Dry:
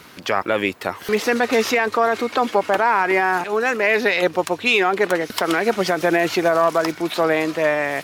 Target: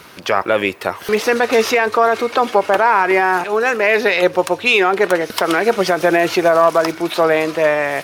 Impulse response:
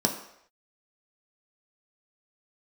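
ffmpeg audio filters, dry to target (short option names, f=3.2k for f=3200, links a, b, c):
-filter_complex "[0:a]asplit=2[a][b];[b]lowshelf=f=190:g=-11.5[c];[1:a]atrim=start_sample=2205,asetrate=70560,aresample=44100[d];[c][d]afir=irnorm=-1:irlink=0,volume=-20.5dB[e];[a][e]amix=inputs=2:normalize=0,volume=2.5dB"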